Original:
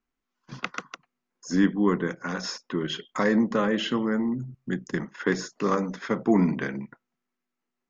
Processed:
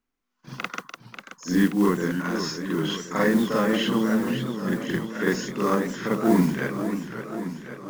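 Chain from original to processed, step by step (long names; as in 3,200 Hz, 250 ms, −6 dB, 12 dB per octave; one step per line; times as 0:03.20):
noise that follows the level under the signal 23 dB
on a send: backwards echo 45 ms −4 dB
on the sum: feedback echo with a swinging delay time 536 ms, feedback 65%, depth 194 cents, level −9 dB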